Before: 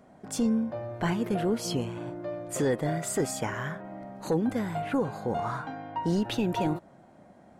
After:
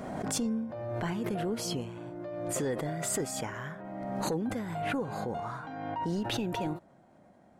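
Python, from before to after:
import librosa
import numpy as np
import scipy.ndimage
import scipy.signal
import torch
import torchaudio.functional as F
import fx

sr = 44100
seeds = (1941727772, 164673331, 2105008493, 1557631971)

y = fx.pre_swell(x, sr, db_per_s=28.0)
y = y * 10.0 ** (-6.0 / 20.0)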